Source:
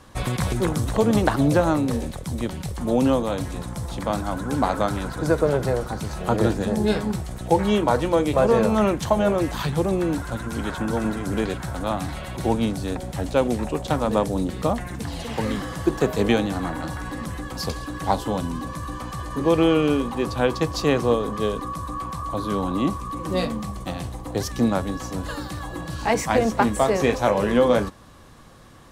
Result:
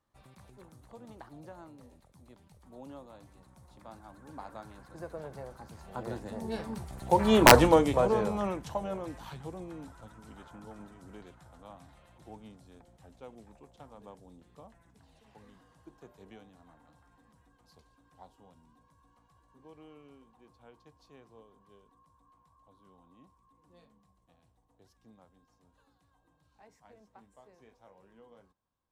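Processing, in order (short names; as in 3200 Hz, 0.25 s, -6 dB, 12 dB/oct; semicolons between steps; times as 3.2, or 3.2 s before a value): Doppler pass-by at 7.54, 18 m/s, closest 2.3 m; bell 870 Hz +4.5 dB 0.83 oct; wrapped overs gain 6.5 dB; gain +3 dB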